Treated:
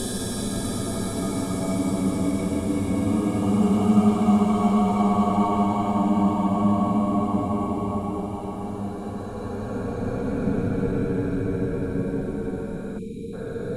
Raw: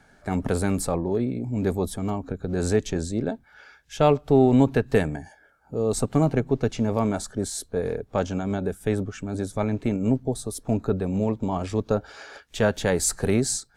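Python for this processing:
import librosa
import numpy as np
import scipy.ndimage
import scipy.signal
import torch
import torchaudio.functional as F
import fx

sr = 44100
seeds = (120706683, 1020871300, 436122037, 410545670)

y = fx.rev_double_slope(x, sr, seeds[0], early_s=0.47, late_s=3.6, knee_db=-27, drr_db=-6.5)
y = fx.paulstretch(y, sr, seeds[1], factor=29.0, window_s=0.1, from_s=1.96)
y = fx.spec_erase(y, sr, start_s=12.98, length_s=0.35, low_hz=490.0, high_hz=2200.0)
y = y * 10.0 ** (-2.0 / 20.0)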